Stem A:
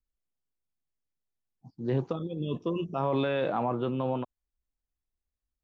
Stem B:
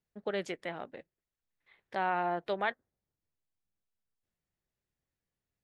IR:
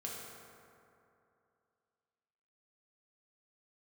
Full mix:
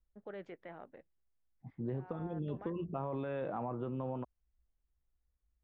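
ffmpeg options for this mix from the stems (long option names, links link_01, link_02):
-filter_complex "[0:a]lowshelf=frequency=76:gain=9.5,volume=-2dB[link_01];[1:a]alimiter=level_in=4.5dB:limit=-24dB:level=0:latency=1:release=11,volume=-4.5dB,volume=-8dB[link_02];[link_01][link_02]amix=inputs=2:normalize=0,lowpass=1800,equalizer=frequency=60:width_type=o:width=0.37:gain=11.5,acompressor=threshold=-35dB:ratio=6"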